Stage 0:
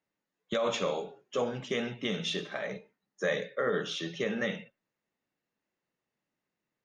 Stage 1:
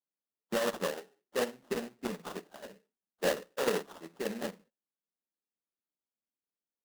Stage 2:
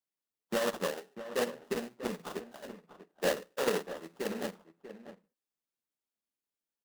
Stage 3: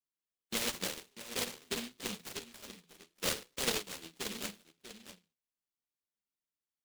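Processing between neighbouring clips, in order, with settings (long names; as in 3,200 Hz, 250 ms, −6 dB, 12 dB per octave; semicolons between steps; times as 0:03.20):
sample-rate reduction 2,300 Hz, jitter 20%; low shelf with overshoot 160 Hz −9 dB, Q 1.5; expander for the loud parts 2.5 to 1, over −39 dBFS; level +1 dB
slap from a distant wall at 110 metres, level −12 dB
flanger 0.84 Hz, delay 7.1 ms, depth 5.9 ms, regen +56%; short delay modulated by noise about 3,100 Hz, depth 0.42 ms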